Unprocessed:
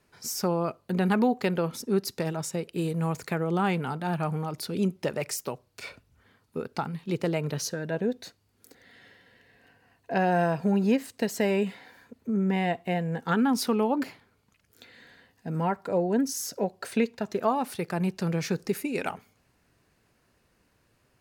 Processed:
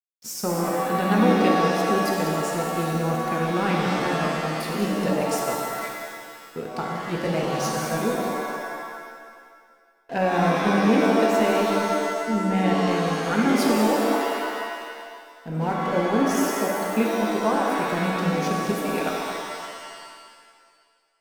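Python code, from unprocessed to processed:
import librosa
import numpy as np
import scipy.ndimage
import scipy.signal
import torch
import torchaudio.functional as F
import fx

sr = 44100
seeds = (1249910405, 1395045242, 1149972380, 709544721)

y = np.sign(x) * np.maximum(np.abs(x) - 10.0 ** (-43.0 / 20.0), 0.0)
y = y + 10.0 ** (-10.0 / 20.0) * np.pad(y, (int(190 * sr / 1000.0), 0))[:len(y)]
y = fx.rev_shimmer(y, sr, seeds[0], rt60_s=1.8, semitones=7, shimmer_db=-2, drr_db=-0.5)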